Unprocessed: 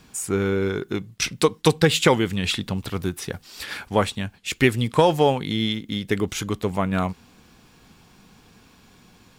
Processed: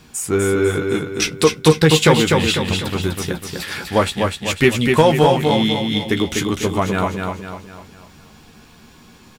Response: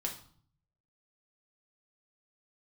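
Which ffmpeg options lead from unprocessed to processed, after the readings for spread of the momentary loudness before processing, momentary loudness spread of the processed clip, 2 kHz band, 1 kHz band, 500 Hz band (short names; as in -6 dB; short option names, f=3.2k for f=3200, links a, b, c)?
12 LU, 13 LU, +6.0 dB, +5.5 dB, +6.0 dB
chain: -filter_complex "[0:a]asplit=2[a][b];[b]adelay=13,volume=-7dB[c];[a][c]amix=inputs=2:normalize=0,aecho=1:1:249|498|747|996|1245:0.596|0.262|0.115|0.0507|0.0223,acontrast=29,volume=-1dB"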